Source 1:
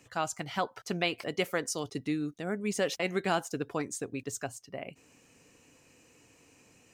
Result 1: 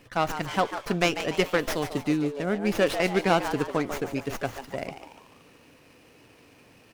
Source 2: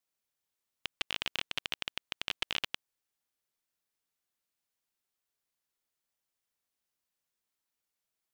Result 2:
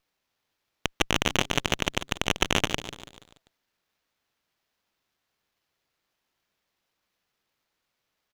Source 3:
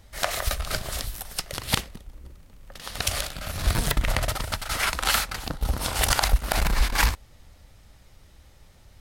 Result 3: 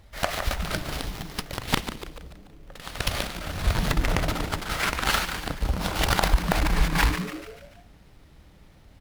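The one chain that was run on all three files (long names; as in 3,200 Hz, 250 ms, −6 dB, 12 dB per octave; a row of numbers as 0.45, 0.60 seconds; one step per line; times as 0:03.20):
on a send: echo with shifted repeats 145 ms, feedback 48%, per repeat +130 Hz, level −10 dB
on the sum: windowed peak hold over 5 samples
loudness normalisation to −27 LKFS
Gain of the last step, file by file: +6.5, +9.5, 0.0 decibels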